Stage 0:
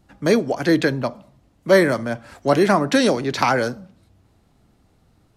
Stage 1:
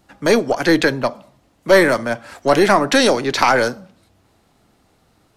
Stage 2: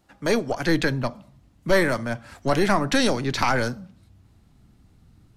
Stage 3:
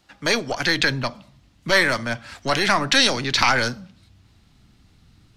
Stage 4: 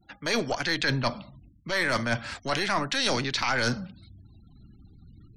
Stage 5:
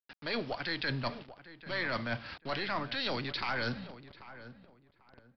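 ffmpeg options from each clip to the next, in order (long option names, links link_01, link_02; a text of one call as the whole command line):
ffmpeg -i in.wav -filter_complex "[0:a]lowshelf=frequency=240:gain=-11.5,asplit=2[link_01][link_02];[link_02]alimiter=limit=-12.5dB:level=0:latency=1:release=18,volume=-1dB[link_03];[link_01][link_03]amix=inputs=2:normalize=0,aeval=exprs='0.794*(cos(1*acos(clip(val(0)/0.794,-1,1)))-cos(1*PI/2))+0.0501*(cos(4*acos(clip(val(0)/0.794,-1,1)))-cos(4*PI/2))':channel_layout=same,volume=1dB" out.wav
ffmpeg -i in.wav -af "asubboost=boost=11:cutoff=200,volume=-7dB" out.wav
ffmpeg -i in.wav -filter_complex "[0:a]acrossover=split=590|5000[link_01][link_02][link_03];[link_01]alimiter=limit=-20dB:level=0:latency=1[link_04];[link_02]crystalizer=i=7:c=0[link_05];[link_04][link_05][link_03]amix=inputs=3:normalize=0" out.wav
ffmpeg -i in.wav -af "areverse,acompressor=threshold=-26dB:ratio=20,areverse,afftfilt=real='re*gte(hypot(re,im),0.00178)':imag='im*gte(hypot(re,im),0.00178)':win_size=1024:overlap=0.75,volume=3.5dB" out.wav
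ffmpeg -i in.wav -filter_complex "[0:a]aresample=16000,acrusher=bits=6:mix=0:aa=0.000001,aresample=44100,asplit=2[link_01][link_02];[link_02]adelay=791,lowpass=frequency=1700:poles=1,volume=-14dB,asplit=2[link_03][link_04];[link_04]adelay=791,lowpass=frequency=1700:poles=1,volume=0.26,asplit=2[link_05][link_06];[link_06]adelay=791,lowpass=frequency=1700:poles=1,volume=0.26[link_07];[link_01][link_03][link_05][link_07]amix=inputs=4:normalize=0,aresample=11025,aresample=44100,volume=-8dB" out.wav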